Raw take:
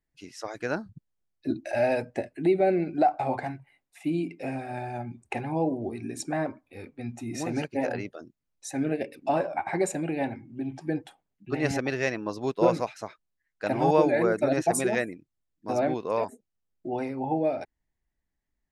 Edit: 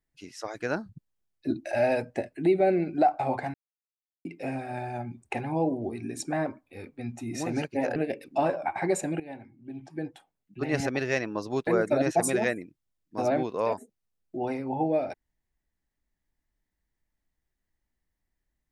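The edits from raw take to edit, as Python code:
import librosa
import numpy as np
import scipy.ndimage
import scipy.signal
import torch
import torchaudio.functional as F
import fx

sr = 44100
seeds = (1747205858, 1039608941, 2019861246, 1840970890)

y = fx.edit(x, sr, fx.silence(start_s=3.54, length_s=0.71),
    fx.cut(start_s=7.96, length_s=0.91),
    fx.fade_in_from(start_s=10.11, length_s=1.78, floor_db=-14.5),
    fx.cut(start_s=12.58, length_s=1.6), tone=tone)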